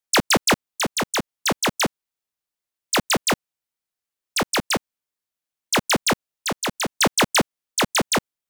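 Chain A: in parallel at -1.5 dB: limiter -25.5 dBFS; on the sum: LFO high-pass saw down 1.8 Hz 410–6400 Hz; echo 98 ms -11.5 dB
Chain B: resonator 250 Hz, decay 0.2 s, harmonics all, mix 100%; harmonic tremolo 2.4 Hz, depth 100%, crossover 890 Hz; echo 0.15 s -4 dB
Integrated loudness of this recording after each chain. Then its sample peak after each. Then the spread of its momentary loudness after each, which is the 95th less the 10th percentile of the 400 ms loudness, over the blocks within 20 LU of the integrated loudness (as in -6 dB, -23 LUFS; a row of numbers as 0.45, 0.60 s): -18.0, -36.0 LUFS; -1.0, -19.0 dBFS; 7, 11 LU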